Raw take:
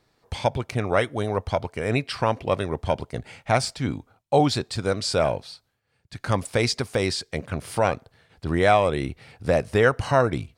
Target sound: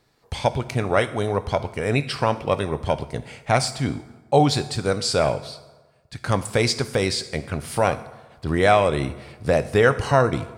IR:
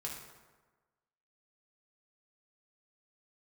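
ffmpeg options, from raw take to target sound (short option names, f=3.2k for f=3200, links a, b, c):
-filter_complex "[0:a]asplit=2[a][b];[1:a]atrim=start_sample=2205,highshelf=f=4.6k:g=10[c];[b][c]afir=irnorm=-1:irlink=0,volume=-9dB[d];[a][d]amix=inputs=2:normalize=0"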